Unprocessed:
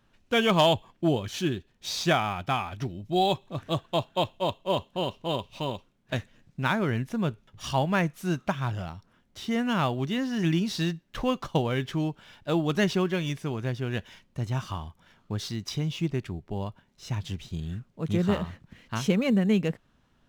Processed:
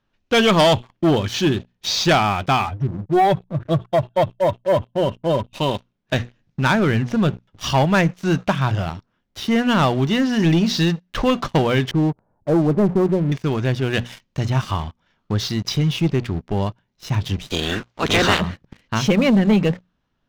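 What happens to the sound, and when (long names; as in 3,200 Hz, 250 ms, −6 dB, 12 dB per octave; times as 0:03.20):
0:02.66–0:05.54: expanding power law on the bin magnitudes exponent 2
0:11.91–0:13.32: inverse Chebyshev low-pass filter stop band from 3,800 Hz, stop band 70 dB
0:13.93–0:14.46: high-shelf EQ 2,800 Hz +7 dB
0:17.47–0:18.39: ceiling on every frequency bin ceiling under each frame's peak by 27 dB
whole clip: inverse Chebyshev low-pass filter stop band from 11,000 Hz, stop band 40 dB; mains-hum notches 60/120/180/240 Hz; leveller curve on the samples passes 3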